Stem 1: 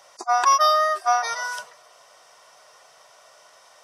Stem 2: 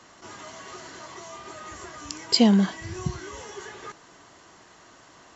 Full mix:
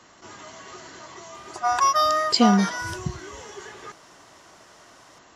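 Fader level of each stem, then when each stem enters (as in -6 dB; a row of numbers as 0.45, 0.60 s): -2.5, -0.5 dB; 1.35, 0.00 s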